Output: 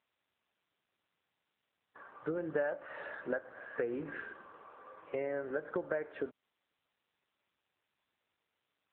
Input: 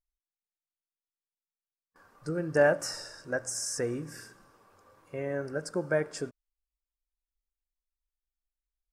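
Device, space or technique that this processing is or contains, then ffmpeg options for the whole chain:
voicemail: -af "highpass=340,lowpass=3k,acompressor=threshold=-41dB:ratio=6,volume=8.5dB" -ar 8000 -c:a libopencore_amrnb -b:a 7950

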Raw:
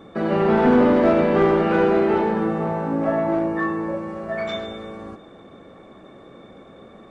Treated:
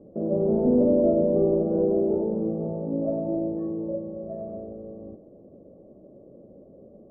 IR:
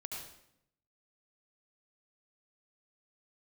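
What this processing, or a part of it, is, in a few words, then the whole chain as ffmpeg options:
under water: -af "lowpass=f=520:w=0.5412,lowpass=f=520:w=1.3066,equalizer=f=590:t=o:w=0.27:g=10,volume=-4.5dB"

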